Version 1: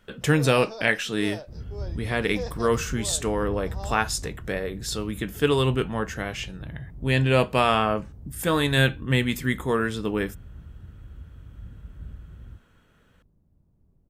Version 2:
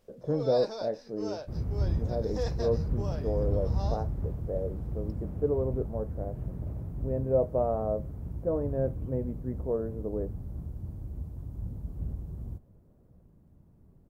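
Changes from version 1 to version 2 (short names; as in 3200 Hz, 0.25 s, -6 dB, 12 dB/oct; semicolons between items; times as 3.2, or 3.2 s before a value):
speech: add ladder low-pass 660 Hz, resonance 60%; second sound +8.0 dB; master: add low shelf 75 Hz -6.5 dB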